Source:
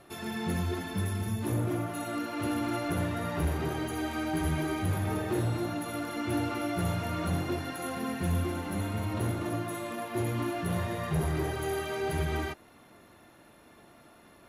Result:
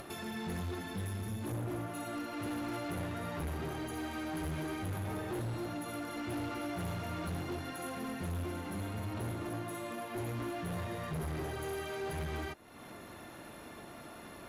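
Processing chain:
upward compression, threshold −32 dBFS
asymmetric clip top −31.5 dBFS, bottom −27.5 dBFS
level −5 dB

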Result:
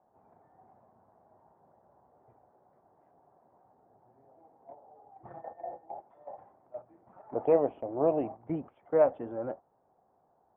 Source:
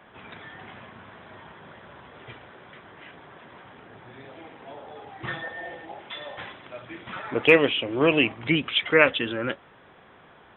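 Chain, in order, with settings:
transistor ladder low-pass 870 Hz, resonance 60%
dynamic equaliser 650 Hz, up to +5 dB, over −45 dBFS, Q 3.1
noise gate −42 dBFS, range −10 dB

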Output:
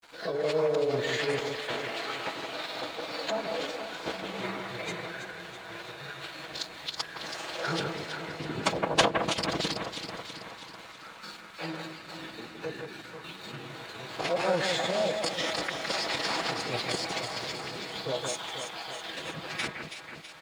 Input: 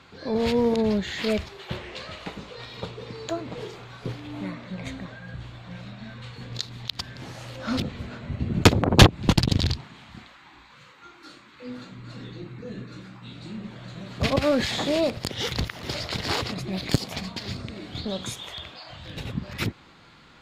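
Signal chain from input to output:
high-pass filter 480 Hz 12 dB per octave
dynamic equaliser 3,700 Hz, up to −5 dB, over −42 dBFS, Q 0.72
comb filter 4 ms, depth 36%
in parallel at +1 dB: compressor whose output falls as the input rises −34 dBFS, ratio −0.5
on the sum: phase-vocoder pitch shift with formants kept −7.5 semitones
granular cloud 100 ms, grains 20 per second, spray 14 ms, pitch spread up and down by 0 semitones
dead-zone distortion −52 dBFS
on a send: delay that swaps between a low-pass and a high-pass 163 ms, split 2,300 Hz, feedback 75%, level −5 dB
on the sum: level −1.5 dB

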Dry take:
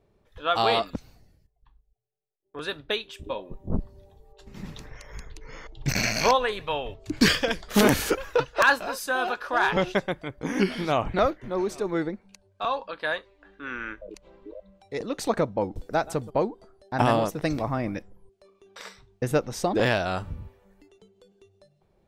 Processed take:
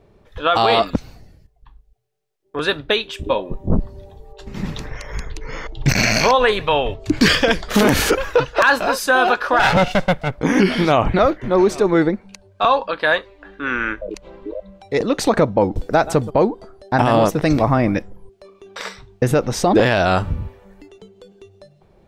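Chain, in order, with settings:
0:09.59–0:10.40: lower of the sound and its delayed copy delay 1.4 ms
high-shelf EQ 6,900 Hz −7 dB
boost into a limiter +17 dB
level −4 dB

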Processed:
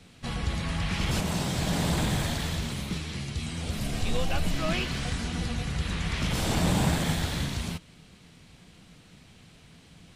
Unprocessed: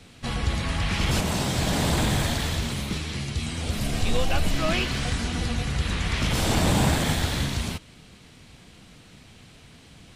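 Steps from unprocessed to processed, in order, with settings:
parametric band 170 Hz +7 dB 0.21 octaves
level −4.5 dB

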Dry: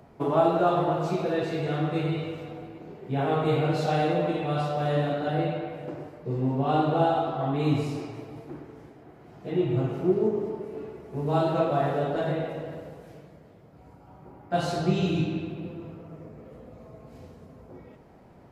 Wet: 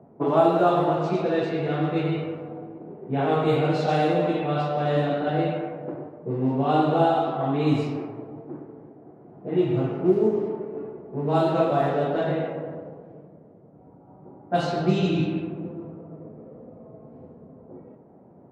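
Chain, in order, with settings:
high-pass filter 180 Hz 12 dB per octave
low-pass that shuts in the quiet parts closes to 680 Hz, open at −20 dBFS
low-shelf EQ 230 Hz +5 dB
level +2.5 dB

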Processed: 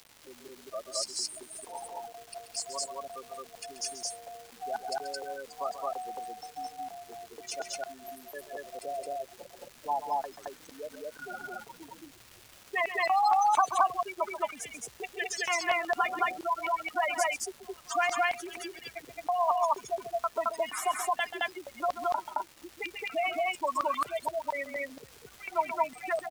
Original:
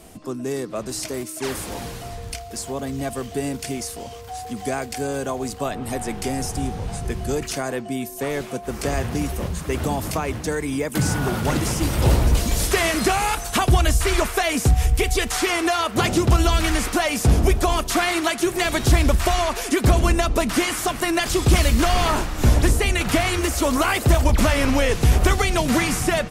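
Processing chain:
gate on every frequency bin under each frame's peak −10 dB strong
upward compression, threshold −33 dBFS
auto-filter high-pass square 2.1 Hz 910–4,700 Hz
surface crackle 500 per second −36 dBFS
loudspeakers that aren't time-aligned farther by 46 metres −11 dB, 75 metres 0 dB
level −6 dB

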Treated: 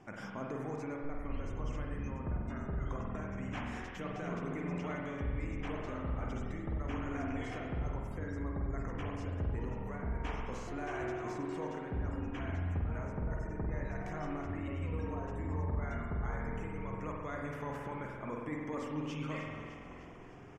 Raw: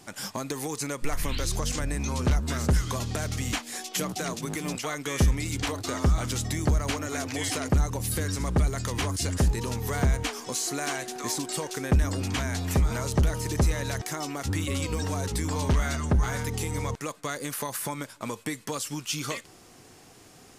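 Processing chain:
parametric band 4,200 Hz −12.5 dB 0.8 octaves
echo with shifted repeats 304 ms, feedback 61%, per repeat −43 Hz, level −16 dB
reversed playback
downward compressor 5 to 1, threshold −35 dBFS, peak gain reduction 15.5 dB
reversed playback
gate on every frequency bin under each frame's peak −30 dB strong
high-frequency loss of the air 200 metres
spring reverb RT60 1.8 s, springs 46 ms, chirp 75 ms, DRR −1 dB
level −3 dB

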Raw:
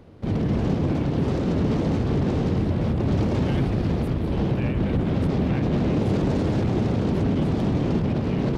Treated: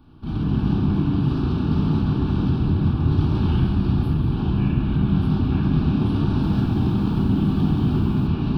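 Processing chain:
phaser with its sweep stopped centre 2,000 Hz, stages 6
convolution reverb RT60 1.2 s, pre-delay 3 ms, DRR −4 dB
0:06.24–0:08.27: feedback echo at a low word length 183 ms, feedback 35%, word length 7 bits, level −14 dB
level −3 dB

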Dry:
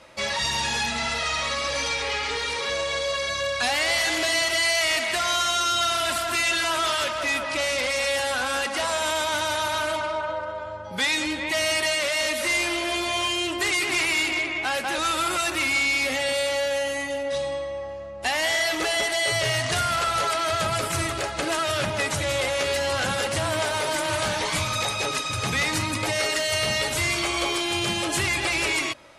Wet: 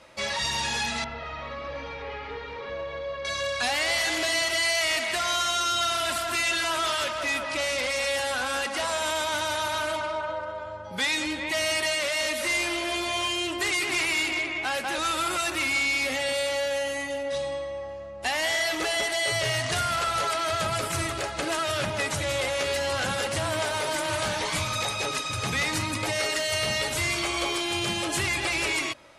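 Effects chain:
0:01.04–0:03.25: head-to-tape spacing loss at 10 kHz 44 dB
level −2.5 dB

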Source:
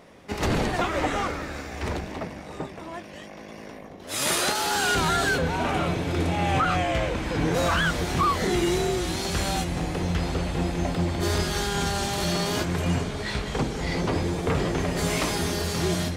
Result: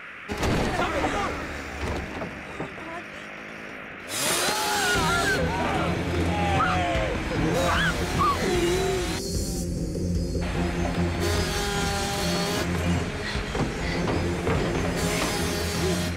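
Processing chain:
noise in a band 1,200–2,600 Hz −41 dBFS
gain on a spectral selection 0:09.19–0:10.42, 570–4,300 Hz −18 dB

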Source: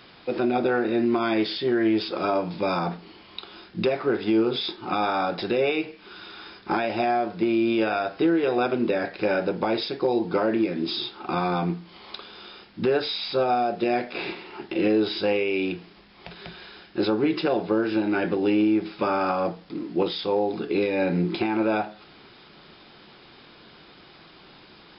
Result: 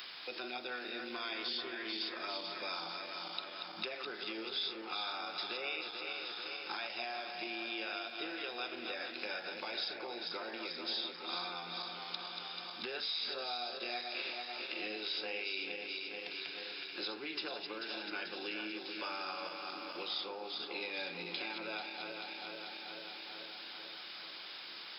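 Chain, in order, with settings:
feedback delay that plays each chunk backwards 219 ms, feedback 76%, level −7 dB
first difference
multiband upward and downward compressor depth 70%

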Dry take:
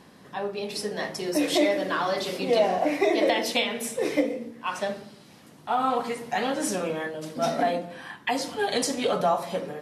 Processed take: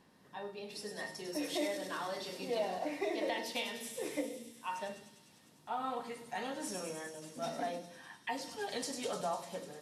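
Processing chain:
tuned comb filter 910 Hz, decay 0.36 s, mix 80%
delay with a high-pass on its return 100 ms, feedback 79%, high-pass 5,400 Hz, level −3.5 dB

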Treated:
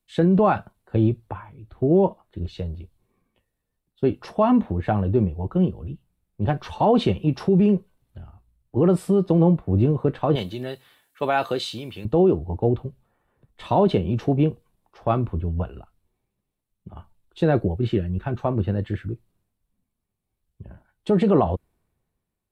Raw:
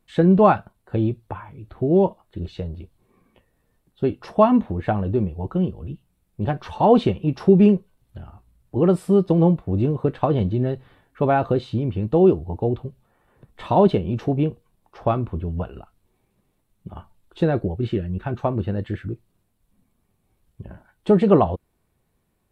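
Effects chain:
0:10.35–0:12.05: spectral tilt +4 dB per octave
brickwall limiter −12.5 dBFS, peak gain reduction 9 dB
multiband upward and downward expander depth 40%
level +1.5 dB

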